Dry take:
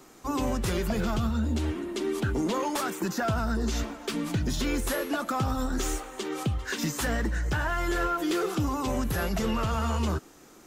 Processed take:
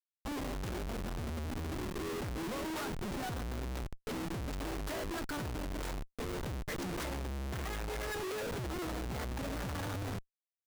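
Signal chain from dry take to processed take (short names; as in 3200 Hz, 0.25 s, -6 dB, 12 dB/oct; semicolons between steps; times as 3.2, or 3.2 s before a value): gliding pitch shift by +4.5 st starting unshifted; Schmitt trigger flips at -31.5 dBFS; gain -8 dB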